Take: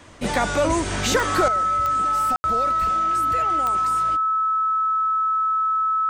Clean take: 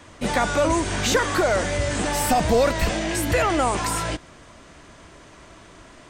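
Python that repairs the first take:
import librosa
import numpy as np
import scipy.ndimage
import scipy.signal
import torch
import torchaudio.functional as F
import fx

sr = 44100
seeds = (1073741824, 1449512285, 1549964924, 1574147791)

y = fx.fix_declick_ar(x, sr, threshold=10.0)
y = fx.notch(y, sr, hz=1300.0, q=30.0)
y = fx.fix_ambience(y, sr, seeds[0], print_start_s=0.0, print_end_s=0.5, start_s=2.36, end_s=2.44)
y = fx.gain(y, sr, db=fx.steps((0.0, 0.0), (1.48, 11.5)))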